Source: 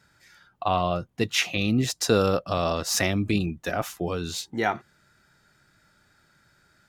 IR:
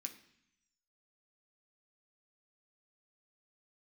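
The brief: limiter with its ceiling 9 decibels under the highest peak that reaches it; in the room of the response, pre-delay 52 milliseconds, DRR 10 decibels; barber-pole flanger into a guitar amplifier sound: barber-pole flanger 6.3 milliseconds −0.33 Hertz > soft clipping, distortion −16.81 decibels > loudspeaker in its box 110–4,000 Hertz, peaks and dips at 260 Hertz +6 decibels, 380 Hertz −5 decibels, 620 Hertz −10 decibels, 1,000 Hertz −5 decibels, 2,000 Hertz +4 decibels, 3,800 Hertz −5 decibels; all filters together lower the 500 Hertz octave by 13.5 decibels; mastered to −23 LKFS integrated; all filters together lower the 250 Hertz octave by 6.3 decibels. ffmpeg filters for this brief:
-filter_complex "[0:a]equalizer=frequency=250:width_type=o:gain=-8,equalizer=frequency=500:width_type=o:gain=-8.5,alimiter=limit=-18dB:level=0:latency=1,asplit=2[link_01][link_02];[1:a]atrim=start_sample=2205,adelay=52[link_03];[link_02][link_03]afir=irnorm=-1:irlink=0,volume=-5.5dB[link_04];[link_01][link_04]amix=inputs=2:normalize=0,asplit=2[link_05][link_06];[link_06]adelay=6.3,afreqshift=-0.33[link_07];[link_05][link_07]amix=inputs=2:normalize=1,asoftclip=threshold=-25dB,highpass=110,equalizer=frequency=260:width_type=q:width=4:gain=6,equalizer=frequency=380:width_type=q:width=4:gain=-5,equalizer=frequency=620:width_type=q:width=4:gain=-10,equalizer=frequency=1000:width_type=q:width=4:gain=-5,equalizer=frequency=2000:width_type=q:width=4:gain=4,equalizer=frequency=3800:width_type=q:width=4:gain=-5,lowpass=frequency=4000:width=0.5412,lowpass=frequency=4000:width=1.3066,volume=14dB"

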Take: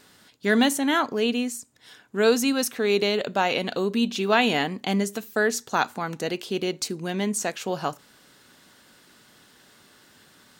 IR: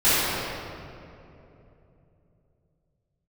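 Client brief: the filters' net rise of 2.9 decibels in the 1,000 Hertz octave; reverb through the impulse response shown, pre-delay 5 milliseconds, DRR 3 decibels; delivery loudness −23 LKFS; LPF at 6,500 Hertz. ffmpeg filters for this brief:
-filter_complex "[0:a]lowpass=6500,equalizer=frequency=1000:width_type=o:gain=4,asplit=2[link_01][link_02];[1:a]atrim=start_sample=2205,adelay=5[link_03];[link_02][link_03]afir=irnorm=-1:irlink=0,volume=-24dB[link_04];[link_01][link_04]amix=inputs=2:normalize=0,volume=-0.5dB"

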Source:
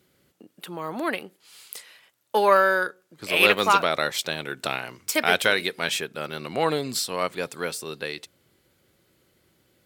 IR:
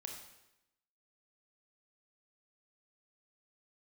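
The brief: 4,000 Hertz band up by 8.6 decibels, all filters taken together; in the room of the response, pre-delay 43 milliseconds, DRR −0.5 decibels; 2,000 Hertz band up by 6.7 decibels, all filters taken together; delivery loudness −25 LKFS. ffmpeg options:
-filter_complex "[0:a]equalizer=frequency=2000:width_type=o:gain=6.5,equalizer=frequency=4000:width_type=o:gain=8.5,asplit=2[link_01][link_02];[1:a]atrim=start_sample=2205,adelay=43[link_03];[link_02][link_03]afir=irnorm=-1:irlink=0,volume=3.5dB[link_04];[link_01][link_04]amix=inputs=2:normalize=0,volume=-9.5dB"

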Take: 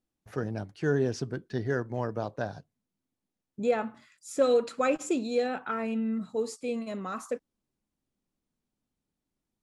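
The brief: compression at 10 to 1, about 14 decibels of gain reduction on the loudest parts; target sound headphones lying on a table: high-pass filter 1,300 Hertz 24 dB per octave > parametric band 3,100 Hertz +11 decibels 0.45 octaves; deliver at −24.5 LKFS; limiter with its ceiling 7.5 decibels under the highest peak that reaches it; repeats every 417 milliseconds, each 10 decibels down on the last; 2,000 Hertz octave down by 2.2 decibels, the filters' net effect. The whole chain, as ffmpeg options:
ffmpeg -i in.wav -af "equalizer=frequency=2000:width_type=o:gain=-4.5,acompressor=threshold=-34dB:ratio=10,alimiter=level_in=7.5dB:limit=-24dB:level=0:latency=1,volume=-7.5dB,highpass=frequency=1300:width=0.5412,highpass=frequency=1300:width=1.3066,equalizer=frequency=3100:width_type=o:width=0.45:gain=11,aecho=1:1:417|834|1251|1668:0.316|0.101|0.0324|0.0104,volume=25dB" out.wav

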